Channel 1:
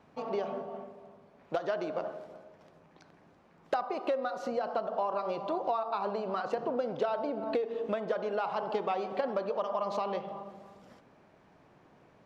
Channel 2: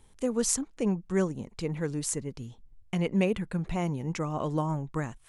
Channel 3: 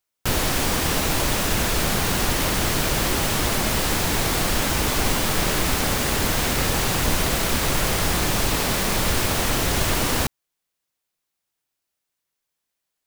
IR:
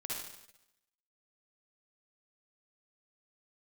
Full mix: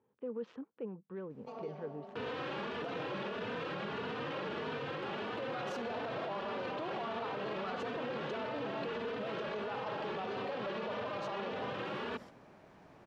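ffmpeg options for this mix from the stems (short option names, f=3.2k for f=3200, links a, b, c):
-filter_complex "[0:a]acompressor=threshold=-35dB:ratio=6,adelay=1300,volume=2dB,asplit=2[a][b];[b]volume=-18dB[c];[1:a]adynamicsmooth=sensitivity=3:basefreq=1.7k,alimiter=level_in=1dB:limit=-24dB:level=0:latency=1:release=21,volume=-1dB,volume=-8.5dB,asplit=2[d][e];[2:a]asplit=2[f][g];[g]adelay=3.2,afreqshift=1.6[h];[f][h]amix=inputs=2:normalize=1,adelay=1900,volume=-6.5dB[i];[e]apad=whole_len=597654[j];[a][j]sidechaincompress=threshold=-52dB:ratio=8:attack=9.1:release=492[k];[d][i]amix=inputs=2:normalize=0,highpass=f=150:w=0.5412,highpass=f=150:w=1.3066,equalizer=f=170:t=q:w=4:g=-7,equalizer=f=310:t=q:w=4:g=-5,equalizer=f=470:t=q:w=4:g=7,equalizer=f=700:t=q:w=4:g=-5,equalizer=f=2.1k:t=q:w=4:g=-7,lowpass=f=2.9k:w=0.5412,lowpass=f=2.9k:w=1.3066,alimiter=level_in=3dB:limit=-24dB:level=0:latency=1:release=302,volume=-3dB,volume=0dB[l];[3:a]atrim=start_sample=2205[m];[c][m]afir=irnorm=-1:irlink=0[n];[k][l][n]amix=inputs=3:normalize=0,alimiter=level_in=7dB:limit=-24dB:level=0:latency=1:release=24,volume=-7dB"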